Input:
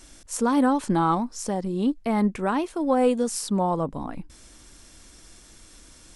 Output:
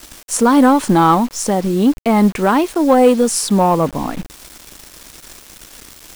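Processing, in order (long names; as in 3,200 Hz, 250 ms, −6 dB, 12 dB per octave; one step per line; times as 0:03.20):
low-shelf EQ 120 Hz −4.5 dB
in parallel at −6.5 dB: gain into a clipping stage and back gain 22.5 dB
on the sum: bit reduction 7 bits
level +8.5 dB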